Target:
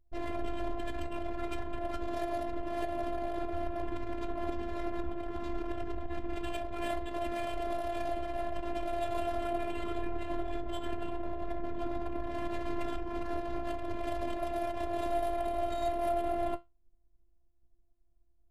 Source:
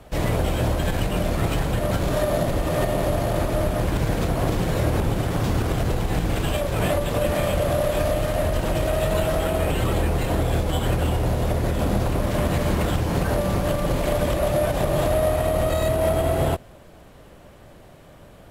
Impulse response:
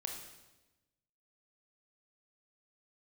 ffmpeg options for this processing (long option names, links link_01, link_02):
-af "anlmdn=158,flanger=delay=9.4:depth=8:regen=65:speed=0.41:shape=triangular,afftfilt=real='hypot(re,im)*cos(PI*b)':imag='0':win_size=512:overlap=0.75,volume=-3.5dB"